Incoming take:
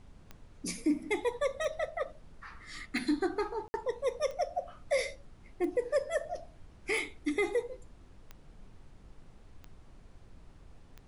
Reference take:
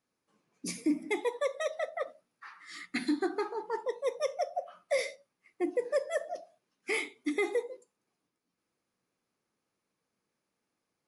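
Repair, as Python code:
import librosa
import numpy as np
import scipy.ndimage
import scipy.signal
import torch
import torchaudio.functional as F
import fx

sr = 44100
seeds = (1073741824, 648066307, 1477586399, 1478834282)

y = fx.fix_declick_ar(x, sr, threshold=10.0)
y = fx.fix_ambience(y, sr, seeds[0], print_start_s=9.8, print_end_s=10.3, start_s=3.68, end_s=3.74)
y = fx.noise_reduce(y, sr, print_start_s=9.8, print_end_s=10.3, reduce_db=29.0)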